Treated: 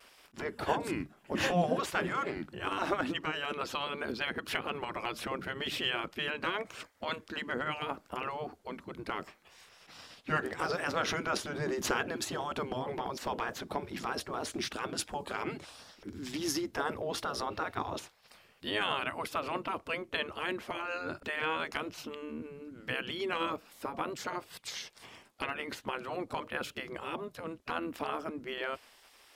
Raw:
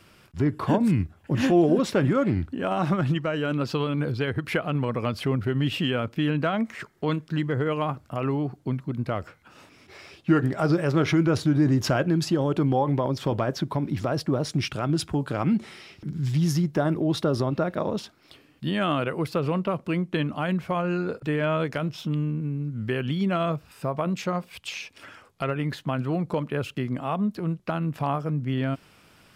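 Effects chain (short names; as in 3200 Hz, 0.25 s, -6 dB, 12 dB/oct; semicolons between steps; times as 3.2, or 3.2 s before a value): vibrato 0.76 Hz 28 cents; spectral gate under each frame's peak -10 dB weak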